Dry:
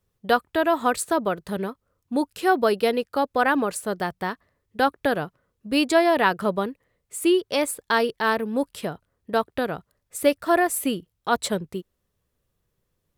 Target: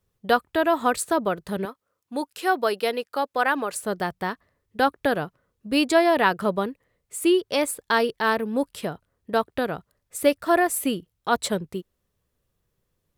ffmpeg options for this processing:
ffmpeg -i in.wav -filter_complex "[0:a]asettb=1/sr,asplit=3[link_01][link_02][link_03];[link_01]atrim=end=1.654[link_04];[link_02]atrim=start=1.65:end=3.73,asetpts=PTS-STARTPTS,afade=type=in:duration=0.004:curve=qsin,afade=type=out:start_time=2.076:duration=0.004:curve=qsin,highpass=frequency=540:poles=1[link_05];[link_03]atrim=start=3.726[link_06];[link_04][link_05]acrossfade=duration=0.004:curve1=hsin:curve2=qsin[link_07];[link_07][link_06]acrossfade=duration=0.004:curve1=qsin:curve2=hsin" out.wav

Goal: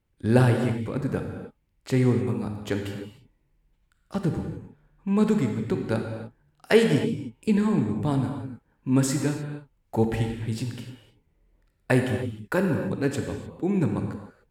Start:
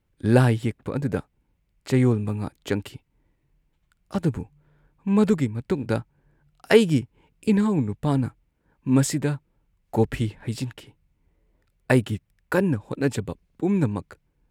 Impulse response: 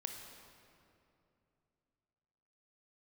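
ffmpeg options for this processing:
-filter_complex "[1:a]atrim=start_sample=2205,afade=type=out:start_time=0.33:duration=0.01,atrim=end_sample=14994,asetrate=40131,aresample=44100[link_01];[0:a][link_01]afir=irnorm=-1:irlink=0"

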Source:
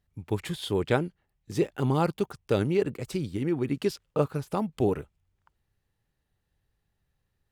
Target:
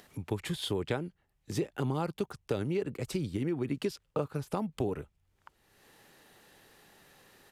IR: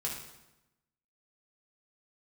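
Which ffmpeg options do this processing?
-filter_complex "[0:a]acrossover=split=220[link_01][link_02];[link_02]acompressor=mode=upward:threshold=-39dB:ratio=2.5[link_03];[link_01][link_03]amix=inputs=2:normalize=0,aresample=32000,aresample=44100,acompressor=threshold=-28dB:ratio=6"

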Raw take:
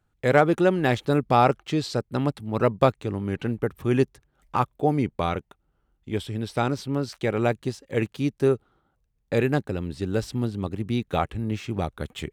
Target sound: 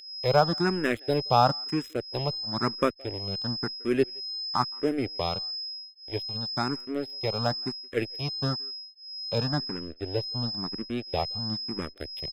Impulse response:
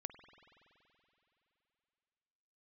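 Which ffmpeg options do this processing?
-filter_complex "[0:a]asettb=1/sr,asplit=3[link_01][link_02][link_03];[link_01]atrim=end=9.384[link_04];[link_02]atrim=start=9.38:end=11.68,asetpts=PTS-STARTPTS,afade=type=in:duration=0.004:curve=qsin,afade=type=out:start_time=2.296:duration=0.004:curve=qsin,highshelf=frequency=4900:gain=-10.5[link_05];[link_03]atrim=start=11.676[link_06];[link_04][link_05]acrossfade=duration=0.004:curve1=hsin:curve2=qsin[link_07];[link_07][link_06]acrossfade=duration=0.004:curve1=qsin:curve2=hsin,aeval=exprs='sgn(val(0))*max(abs(val(0))-0.0251,0)':channel_layout=same,aeval=exprs='val(0)+0.0282*sin(2*PI*5100*n/s)':channel_layout=same,asplit=2[link_08][link_09];[link_09]adelay=170,highpass=300,lowpass=3400,asoftclip=type=hard:threshold=-13dB,volume=-27dB[link_10];[link_08][link_10]amix=inputs=2:normalize=0,asplit=2[link_11][link_12];[link_12]afreqshift=1[link_13];[link_11][link_13]amix=inputs=2:normalize=1"

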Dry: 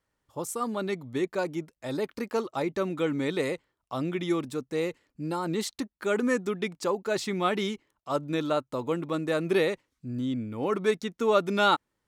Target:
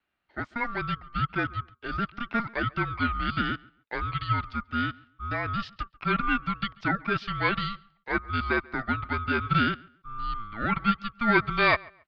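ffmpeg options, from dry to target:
ffmpeg -i in.wav -filter_complex "[0:a]asplit=2[link_01][link_02];[link_02]adelay=138,lowpass=frequency=2600:poles=1,volume=-24dB,asplit=2[link_03][link_04];[link_04]adelay=138,lowpass=frequency=2600:poles=1,volume=0.25[link_05];[link_01][link_03][link_05]amix=inputs=3:normalize=0,highpass=frequency=240:width_type=q:width=0.5412,highpass=frequency=240:width_type=q:width=1.307,lowpass=frequency=3500:width_type=q:width=0.5176,lowpass=frequency=3500:width_type=q:width=0.7071,lowpass=frequency=3500:width_type=q:width=1.932,afreqshift=360,aeval=exprs='val(0)*sin(2*PI*590*n/s)':channel_layout=same,volume=4dB" out.wav

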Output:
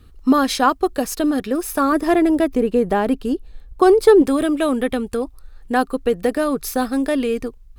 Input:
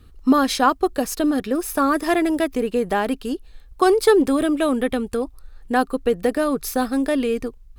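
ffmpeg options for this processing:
ffmpeg -i in.wav -filter_complex "[0:a]asettb=1/sr,asplit=3[link_01][link_02][link_03];[link_01]atrim=end=1.924[link_04];[link_02]atrim=start=1.92:end=4.22,asetpts=PTS-STARTPTS,afade=type=in:duration=0.004:curve=qsin,afade=type=out:start_time=2.296:duration=0.004:curve=qsin,tiltshelf=frequency=970:gain=4.5[link_05];[link_03]atrim=start=4.216[link_06];[link_04][link_05]acrossfade=duration=0.004:curve1=hsin:curve2=qsin[link_07];[link_07][link_06]acrossfade=duration=0.004:curve1=qsin:curve2=hsin,volume=1dB" out.wav

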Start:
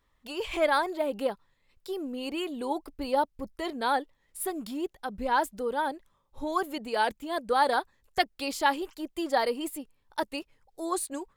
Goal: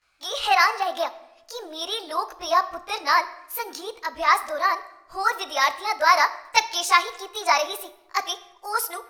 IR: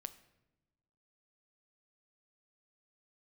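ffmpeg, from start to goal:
-filter_complex "[0:a]acrossover=split=560 7600:gain=0.141 1 0.126[link_01][link_02][link_03];[link_01][link_02][link_03]amix=inputs=3:normalize=0,asetrate=55125,aresample=44100,asplit=2[link_04][link_05];[1:a]atrim=start_sample=2205,highshelf=frequency=7500:gain=8,adelay=18[link_06];[link_05][link_06]afir=irnorm=-1:irlink=0,volume=12.5dB[link_07];[link_04][link_07]amix=inputs=2:normalize=0"

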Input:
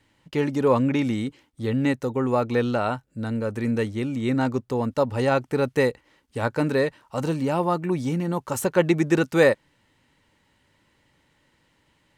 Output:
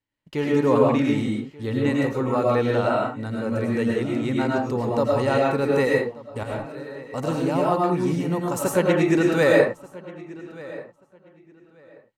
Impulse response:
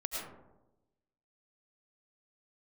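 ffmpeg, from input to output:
-filter_complex "[0:a]agate=range=-22dB:threshold=-49dB:ratio=16:detection=peak,asettb=1/sr,asplit=3[link_01][link_02][link_03];[link_01]atrim=end=6.434[link_04];[link_02]atrim=start=6.43:end=7.02,asetpts=PTS-STARTPTS,afade=type=in:duration=0.004:curve=qsin,afade=type=out:start_time=0.586:duration=0.004:curve=qsin,acompressor=threshold=-41dB:ratio=3[link_05];[link_03]atrim=start=7.016[link_06];[link_04][link_05]acrossfade=duration=0.004:curve1=hsin:curve2=qsin[link_07];[link_07][link_06]acrossfade=duration=0.004:curve1=qsin:curve2=hsin,asplit=2[link_08][link_09];[link_09]adelay=1184,lowpass=frequency=4100:poles=1,volume=-19dB,asplit=2[link_10][link_11];[link_11]adelay=1184,lowpass=frequency=4100:poles=1,volume=0.21[link_12];[link_08][link_10][link_12]amix=inputs=3:normalize=0[link_13];[1:a]atrim=start_sample=2205,afade=type=out:start_time=0.26:duration=0.01,atrim=end_sample=11907[link_14];[link_13][link_14]afir=irnorm=-1:irlink=0"

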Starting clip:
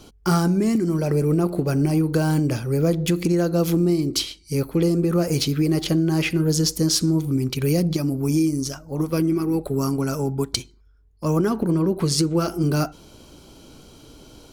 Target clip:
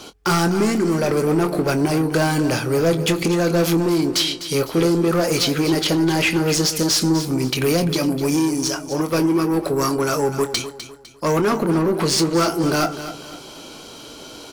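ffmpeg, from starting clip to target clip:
ffmpeg -i in.wav -filter_complex "[0:a]asplit=2[link_01][link_02];[link_02]highpass=frequency=720:poles=1,volume=23dB,asoftclip=type=tanh:threshold=-5.5dB[link_03];[link_01][link_03]amix=inputs=2:normalize=0,lowpass=frequency=6100:poles=1,volume=-6dB,asplit=2[link_04][link_05];[link_05]adelay=24,volume=-10.5dB[link_06];[link_04][link_06]amix=inputs=2:normalize=0,aecho=1:1:252|504|756|1008:0.251|0.0879|0.0308|0.0108,volume=-4dB" out.wav

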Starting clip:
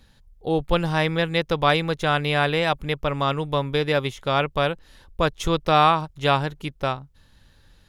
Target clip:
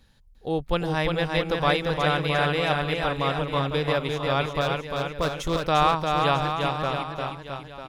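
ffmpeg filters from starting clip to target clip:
ffmpeg -i in.wav -filter_complex "[0:a]asettb=1/sr,asplit=3[link_01][link_02][link_03];[link_01]atrim=end=4.614[link_04];[link_02]atrim=start=4.61:end=5.57,asetpts=PTS-STARTPTS,afade=type=in:duration=0.004:curve=qsin,afade=type=out:start_time=0.956:duration=0.004:curve=qsin,aeval=exprs='0.237*(abs(mod(val(0)/0.237+3,4)-2)-1)':channel_layout=same[link_05];[link_03]atrim=start=5.566[link_06];[link_04][link_05]acrossfade=duration=0.004:curve1=hsin:curve2=qsin[link_07];[link_07][link_06]acrossfade=duration=0.004:curve1=qsin:curve2=hsin,aecho=1:1:350|665|948.5|1204|1433:0.631|0.398|0.251|0.158|0.1,volume=-4dB" out.wav

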